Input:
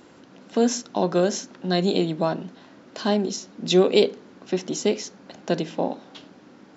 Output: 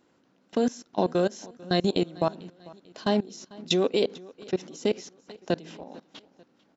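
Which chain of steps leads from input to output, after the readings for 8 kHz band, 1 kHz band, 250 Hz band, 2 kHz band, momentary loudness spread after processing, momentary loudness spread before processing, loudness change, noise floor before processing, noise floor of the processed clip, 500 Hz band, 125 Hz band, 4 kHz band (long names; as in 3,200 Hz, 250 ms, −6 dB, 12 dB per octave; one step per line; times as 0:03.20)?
can't be measured, −3.5 dB, −4.5 dB, −4.0 dB, 19 LU, 15 LU, −4.0 dB, −51 dBFS, −66 dBFS, −4.5 dB, −4.5 dB, −4.0 dB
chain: output level in coarse steps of 22 dB
repeating echo 445 ms, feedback 45%, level −22 dB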